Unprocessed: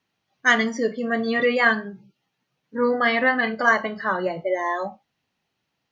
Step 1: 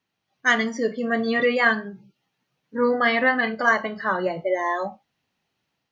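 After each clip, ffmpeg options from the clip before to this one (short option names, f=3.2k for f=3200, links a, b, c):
-af "dynaudnorm=f=100:g=5:m=4dB,volume=-3.5dB"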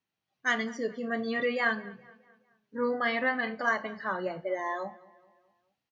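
-filter_complex "[0:a]asplit=2[a][b];[b]adelay=212,lowpass=f=3.3k:p=1,volume=-21dB,asplit=2[c][d];[d]adelay=212,lowpass=f=3.3k:p=1,volume=0.49,asplit=2[e][f];[f]adelay=212,lowpass=f=3.3k:p=1,volume=0.49,asplit=2[g][h];[h]adelay=212,lowpass=f=3.3k:p=1,volume=0.49[i];[a][c][e][g][i]amix=inputs=5:normalize=0,volume=-8.5dB"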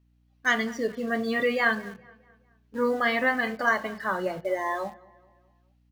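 -filter_complex "[0:a]aeval=exprs='val(0)+0.000562*(sin(2*PI*60*n/s)+sin(2*PI*2*60*n/s)/2+sin(2*PI*3*60*n/s)/3+sin(2*PI*4*60*n/s)/4+sin(2*PI*5*60*n/s)/5)':c=same,asplit=2[a][b];[b]acrusher=bits=6:mix=0:aa=0.000001,volume=-11.5dB[c];[a][c]amix=inputs=2:normalize=0,volume=2dB"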